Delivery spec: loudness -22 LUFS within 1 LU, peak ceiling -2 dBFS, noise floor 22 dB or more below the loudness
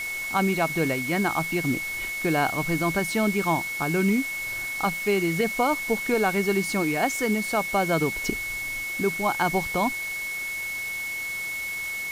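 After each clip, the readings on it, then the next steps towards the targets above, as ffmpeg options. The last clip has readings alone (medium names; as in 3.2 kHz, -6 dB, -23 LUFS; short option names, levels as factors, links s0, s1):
steady tone 2.2 kHz; tone level -29 dBFS; noise floor -32 dBFS; noise floor target -47 dBFS; loudness -25.0 LUFS; peak level -10.5 dBFS; loudness target -22.0 LUFS
-> -af "bandreject=f=2200:w=30"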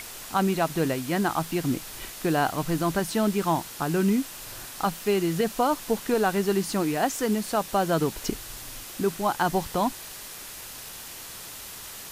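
steady tone not found; noise floor -41 dBFS; noise floor target -49 dBFS
-> -af "afftdn=nr=8:nf=-41"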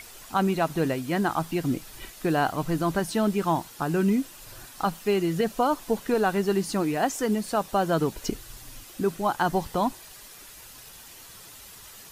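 noise floor -47 dBFS; noise floor target -49 dBFS
-> -af "afftdn=nr=6:nf=-47"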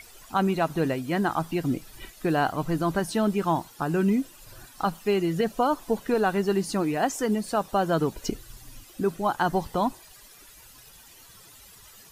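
noise floor -51 dBFS; loudness -26.5 LUFS; peak level -11.0 dBFS; loudness target -22.0 LUFS
-> -af "volume=1.68"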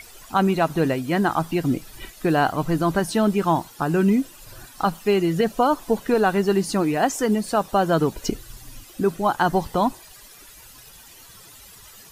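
loudness -22.0 LUFS; peak level -6.5 dBFS; noise floor -46 dBFS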